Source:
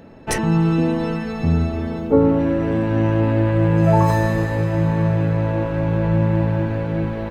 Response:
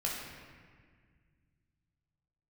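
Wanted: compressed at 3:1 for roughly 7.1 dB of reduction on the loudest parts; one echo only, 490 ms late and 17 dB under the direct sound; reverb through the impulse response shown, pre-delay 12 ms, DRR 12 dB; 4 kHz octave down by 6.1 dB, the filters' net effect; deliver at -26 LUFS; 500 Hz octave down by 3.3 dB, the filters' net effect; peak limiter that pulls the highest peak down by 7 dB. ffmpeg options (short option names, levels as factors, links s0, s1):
-filter_complex "[0:a]equalizer=f=500:t=o:g=-4,equalizer=f=4000:t=o:g=-8.5,acompressor=threshold=0.0794:ratio=3,alimiter=limit=0.119:level=0:latency=1,aecho=1:1:490:0.141,asplit=2[s0][s1];[1:a]atrim=start_sample=2205,adelay=12[s2];[s1][s2]afir=irnorm=-1:irlink=0,volume=0.15[s3];[s0][s3]amix=inputs=2:normalize=0,volume=1.06"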